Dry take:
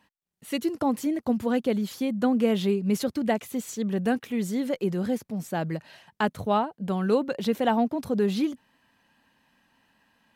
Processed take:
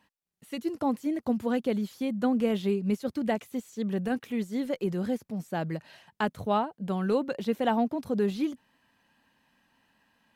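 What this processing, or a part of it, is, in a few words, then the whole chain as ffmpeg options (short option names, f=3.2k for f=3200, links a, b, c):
de-esser from a sidechain: -filter_complex "[0:a]asplit=2[a][b];[b]highpass=f=6.6k:w=0.5412,highpass=f=6.6k:w=1.3066,apad=whole_len=456461[c];[a][c]sidechaincompress=threshold=-52dB:ratio=4:attack=2.6:release=32,volume=-2.5dB"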